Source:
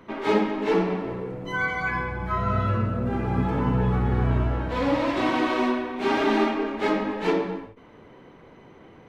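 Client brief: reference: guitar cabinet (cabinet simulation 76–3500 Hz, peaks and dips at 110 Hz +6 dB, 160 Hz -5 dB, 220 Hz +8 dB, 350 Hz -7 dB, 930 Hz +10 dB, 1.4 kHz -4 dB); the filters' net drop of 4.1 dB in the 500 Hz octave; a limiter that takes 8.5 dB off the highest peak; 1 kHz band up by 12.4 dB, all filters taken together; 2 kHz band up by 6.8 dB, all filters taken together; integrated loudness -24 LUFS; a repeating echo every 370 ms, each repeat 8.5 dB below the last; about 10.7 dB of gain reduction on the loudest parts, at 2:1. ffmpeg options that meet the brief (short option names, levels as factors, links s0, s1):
-af "equalizer=f=500:t=o:g=-6,equalizer=f=1000:t=o:g=7.5,equalizer=f=2000:t=o:g=8,acompressor=threshold=0.0158:ratio=2,alimiter=level_in=1.19:limit=0.0631:level=0:latency=1,volume=0.841,highpass=76,equalizer=f=110:t=q:w=4:g=6,equalizer=f=160:t=q:w=4:g=-5,equalizer=f=220:t=q:w=4:g=8,equalizer=f=350:t=q:w=4:g=-7,equalizer=f=930:t=q:w=4:g=10,equalizer=f=1400:t=q:w=4:g=-4,lowpass=f=3500:w=0.5412,lowpass=f=3500:w=1.3066,aecho=1:1:370|740|1110|1480:0.376|0.143|0.0543|0.0206,volume=2.24"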